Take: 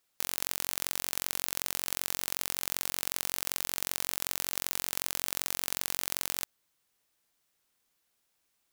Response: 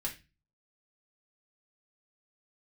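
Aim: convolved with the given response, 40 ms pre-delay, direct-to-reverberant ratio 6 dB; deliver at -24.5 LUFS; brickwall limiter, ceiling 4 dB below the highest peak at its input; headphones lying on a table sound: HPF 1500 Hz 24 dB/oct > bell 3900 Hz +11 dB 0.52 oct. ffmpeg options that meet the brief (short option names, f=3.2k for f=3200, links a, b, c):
-filter_complex "[0:a]alimiter=limit=-7dB:level=0:latency=1,asplit=2[a][b];[1:a]atrim=start_sample=2205,adelay=40[c];[b][c]afir=irnorm=-1:irlink=0,volume=-7.5dB[d];[a][d]amix=inputs=2:normalize=0,highpass=f=1.5k:w=0.5412,highpass=f=1.5k:w=1.3066,equalizer=f=3.9k:t=o:w=0.52:g=11,volume=8dB"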